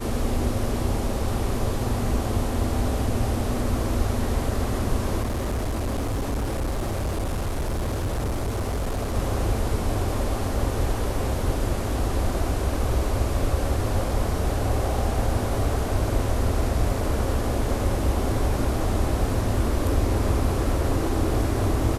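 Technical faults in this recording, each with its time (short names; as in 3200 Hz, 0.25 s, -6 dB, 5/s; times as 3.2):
5.21–9.16 clipped -22.5 dBFS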